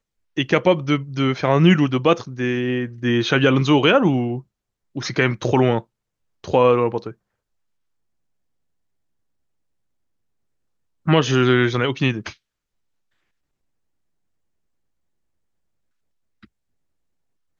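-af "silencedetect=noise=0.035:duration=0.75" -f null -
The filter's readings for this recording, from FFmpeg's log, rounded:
silence_start: 7.11
silence_end: 11.07 | silence_duration: 3.97
silence_start: 12.31
silence_end: 17.59 | silence_duration: 5.28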